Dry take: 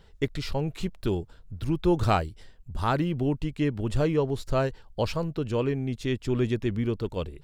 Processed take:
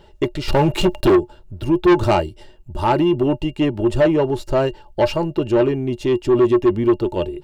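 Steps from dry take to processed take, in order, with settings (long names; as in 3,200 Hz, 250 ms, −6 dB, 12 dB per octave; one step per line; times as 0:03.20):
0:00.48–0:01.16: leveller curve on the samples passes 3
hollow resonant body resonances 360/600/860/2,800 Hz, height 18 dB, ringing for 90 ms
soft clipping −13.5 dBFS, distortion −7 dB
level +4.5 dB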